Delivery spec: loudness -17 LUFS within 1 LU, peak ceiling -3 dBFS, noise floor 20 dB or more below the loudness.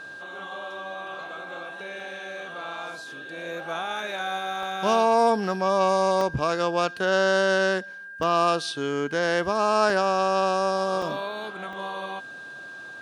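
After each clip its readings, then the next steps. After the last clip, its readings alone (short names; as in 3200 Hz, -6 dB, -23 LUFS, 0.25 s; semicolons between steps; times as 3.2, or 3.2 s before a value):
dropouts 7; longest dropout 1.8 ms; steady tone 1600 Hz; tone level -38 dBFS; loudness -25.0 LUFS; peak -8.5 dBFS; loudness target -17.0 LUFS
-> interpolate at 2/4.63/6.21/8.23/9.9/11.02/11.73, 1.8 ms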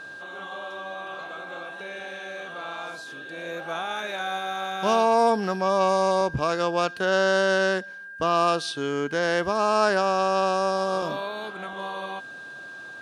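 dropouts 0; steady tone 1600 Hz; tone level -38 dBFS
-> notch 1600 Hz, Q 30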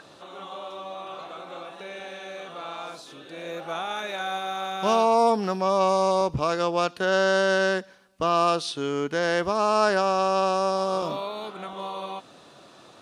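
steady tone none; loudness -24.5 LUFS; peak -8.5 dBFS; loudness target -17.0 LUFS
-> gain +7.5 dB; limiter -3 dBFS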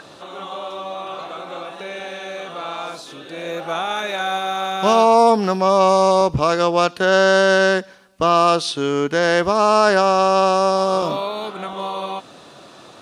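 loudness -17.0 LUFS; peak -3.0 dBFS; noise floor -44 dBFS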